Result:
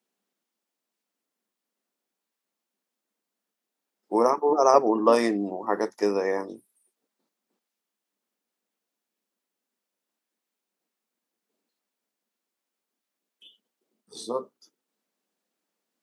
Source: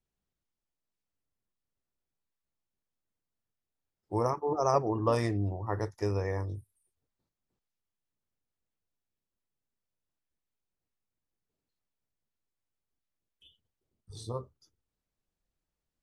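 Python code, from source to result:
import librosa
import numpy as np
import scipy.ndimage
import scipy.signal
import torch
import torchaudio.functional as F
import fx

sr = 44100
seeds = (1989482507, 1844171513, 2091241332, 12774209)

y = scipy.signal.sosfilt(scipy.signal.ellip(4, 1.0, 70, 210.0, 'highpass', fs=sr, output='sos'), x)
y = y * 10.0 ** (9.0 / 20.0)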